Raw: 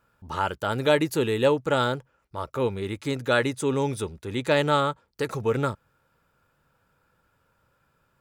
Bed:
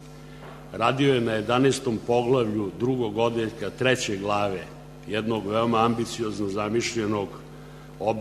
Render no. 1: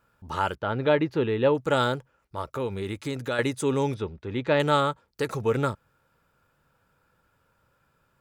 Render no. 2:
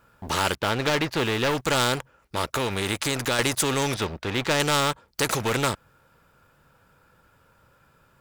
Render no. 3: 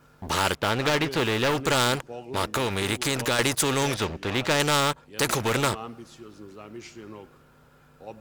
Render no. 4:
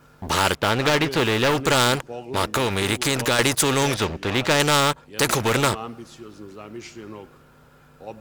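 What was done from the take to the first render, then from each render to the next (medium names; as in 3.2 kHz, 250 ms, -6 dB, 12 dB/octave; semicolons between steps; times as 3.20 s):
0.55–1.55 s: distance through air 300 m; 2.41–3.39 s: compression 2.5:1, threshold -27 dBFS; 3.94–4.60 s: distance through air 220 m
waveshaping leveller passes 2; spectrum-flattening compressor 2:1
add bed -16.5 dB
trim +4 dB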